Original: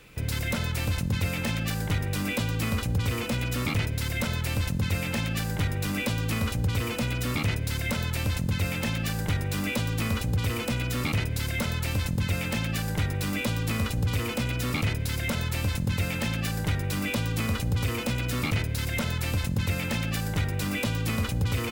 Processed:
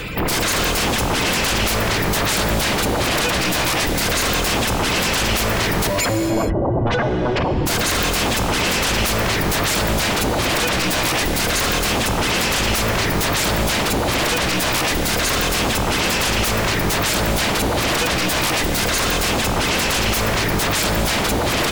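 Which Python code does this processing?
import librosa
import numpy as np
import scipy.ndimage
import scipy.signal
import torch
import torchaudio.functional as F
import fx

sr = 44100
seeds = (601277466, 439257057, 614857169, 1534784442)

y = fx.spec_expand(x, sr, power=3.8, at=(5.87, 7.67))
y = fx.dereverb_blind(y, sr, rt60_s=0.8)
y = fx.spec_gate(y, sr, threshold_db=-25, keep='strong')
y = fx.rider(y, sr, range_db=10, speed_s=0.5)
y = fx.fold_sine(y, sr, drive_db=19, ceiling_db=-17.0)
y = fx.rev_gated(y, sr, seeds[0], gate_ms=460, shape='flat', drr_db=5.5)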